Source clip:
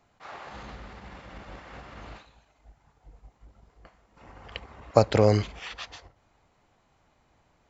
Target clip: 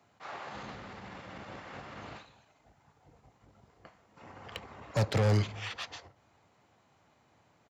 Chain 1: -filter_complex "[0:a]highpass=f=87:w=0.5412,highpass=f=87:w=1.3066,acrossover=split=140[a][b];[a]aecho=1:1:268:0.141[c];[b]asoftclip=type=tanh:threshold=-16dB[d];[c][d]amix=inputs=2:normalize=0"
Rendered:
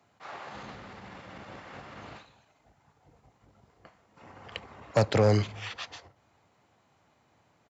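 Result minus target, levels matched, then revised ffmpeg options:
soft clip: distortion -8 dB
-filter_complex "[0:a]highpass=f=87:w=0.5412,highpass=f=87:w=1.3066,acrossover=split=140[a][b];[a]aecho=1:1:268:0.141[c];[b]asoftclip=type=tanh:threshold=-27.5dB[d];[c][d]amix=inputs=2:normalize=0"

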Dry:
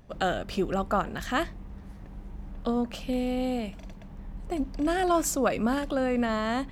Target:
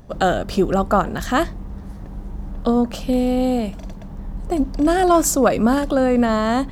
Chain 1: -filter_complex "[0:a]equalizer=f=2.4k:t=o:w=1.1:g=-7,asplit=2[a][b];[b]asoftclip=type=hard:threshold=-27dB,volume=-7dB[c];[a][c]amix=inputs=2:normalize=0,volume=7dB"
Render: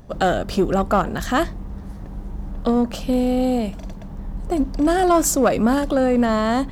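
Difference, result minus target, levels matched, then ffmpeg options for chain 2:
hard clip: distortion +21 dB
-filter_complex "[0:a]equalizer=f=2.4k:t=o:w=1.1:g=-7,asplit=2[a][b];[b]asoftclip=type=hard:threshold=-17dB,volume=-7dB[c];[a][c]amix=inputs=2:normalize=0,volume=7dB"

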